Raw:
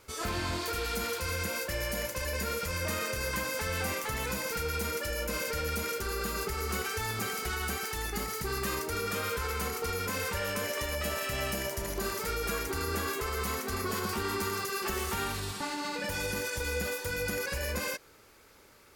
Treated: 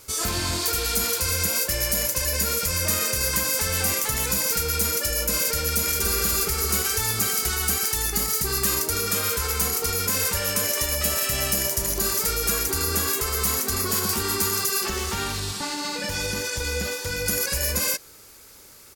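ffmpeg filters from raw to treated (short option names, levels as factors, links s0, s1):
-filter_complex "[0:a]asplit=2[s0][s1];[s1]afade=t=in:st=5.58:d=0.01,afade=t=out:st=6.13:d=0.01,aecho=0:1:290|580|870|1160|1450|1740|2030:0.630957|0.347027|0.190865|0.104976|0.0577365|0.0317551|0.0174653[s2];[s0][s2]amix=inputs=2:normalize=0,asettb=1/sr,asplit=3[s3][s4][s5];[s3]atrim=end=14.864[s6];[s4]atrim=start=14.86:end=17.26,asetpts=PTS-STARTPTS,afade=t=in:d=0.004:c=qsin,afade=t=out:st=2.396:d=0.004:c=qsin,acrossover=split=6200[s7][s8];[s8]acompressor=threshold=0.002:ratio=4:attack=1:release=60[s9];[s7][s9]amix=inputs=2:normalize=0[s10];[s5]atrim=start=17.256[s11];[s6][s10]acrossfade=d=0.004:c1=hsin:c2=qsin[s12];[s12][s11]acrossfade=d=0.004:c1=qsin:c2=hsin,bass=f=250:g=3,treble=f=4000:g=13,volume=1.5"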